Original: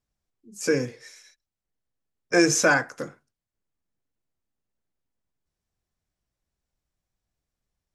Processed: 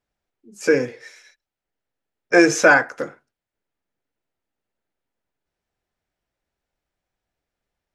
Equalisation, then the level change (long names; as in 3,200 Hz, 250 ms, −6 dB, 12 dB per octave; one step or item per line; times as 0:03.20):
bass and treble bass −10 dB, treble −11 dB
notch filter 1,100 Hz, Q 10
+7.5 dB